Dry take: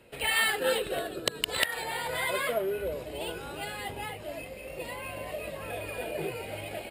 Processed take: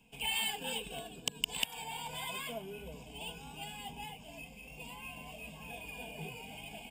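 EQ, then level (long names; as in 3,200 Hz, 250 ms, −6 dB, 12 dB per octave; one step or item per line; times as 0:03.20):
phaser with its sweep stopped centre 350 Hz, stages 6
phaser with its sweep stopped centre 2,800 Hz, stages 8
0.0 dB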